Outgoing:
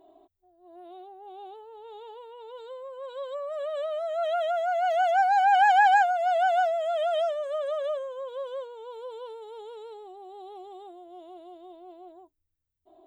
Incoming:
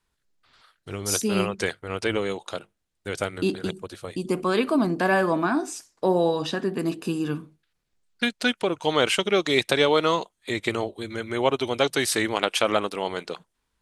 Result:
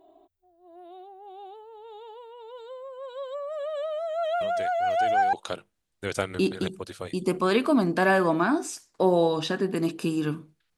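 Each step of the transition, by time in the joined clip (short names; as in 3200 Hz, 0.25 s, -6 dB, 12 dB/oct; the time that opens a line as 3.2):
outgoing
4.41 add incoming from 1.44 s 0.92 s -13 dB
5.33 switch to incoming from 2.36 s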